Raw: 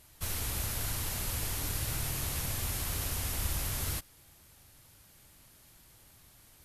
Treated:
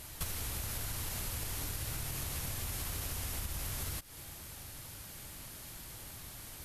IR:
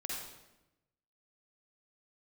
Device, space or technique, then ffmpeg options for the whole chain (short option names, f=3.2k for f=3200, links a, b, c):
serial compression, leveller first: -af "acompressor=threshold=-39dB:ratio=2,acompressor=threshold=-46dB:ratio=10,volume=11dB"